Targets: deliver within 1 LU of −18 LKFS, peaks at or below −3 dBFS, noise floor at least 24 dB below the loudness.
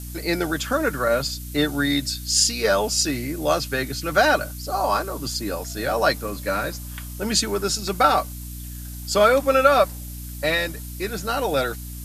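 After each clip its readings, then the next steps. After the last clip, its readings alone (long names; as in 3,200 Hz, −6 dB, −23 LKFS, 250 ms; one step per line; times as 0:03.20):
mains hum 60 Hz; hum harmonics up to 300 Hz; level of the hum −33 dBFS; background noise floor −34 dBFS; target noise floor −46 dBFS; integrated loudness −22.0 LKFS; sample peak −3.0 dBFS; target loudness −18.0 LKFS
→ hum removal 60 Hz, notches 5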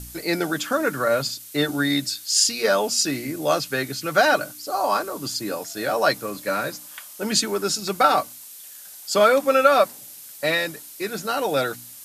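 mains hum none found; background noise floor −42 dBFS; target noise floor −46 dBFS
→ noise reduction from a noise print 6 dB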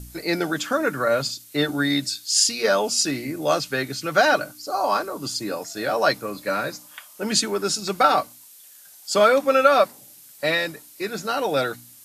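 background noise floor −48 dBFS; integrated loudness −22.0 LKFS; sample peak −3.0 dBFS; target loudness −18.0 LKFS
→ level +4 dB
brickwall limiter −3 dBFS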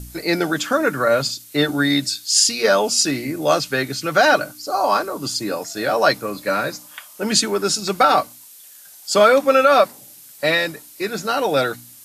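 integrated loudness −18.5 LKFS; sample peak −3.0 dBFS; background noise floor −44 dBFS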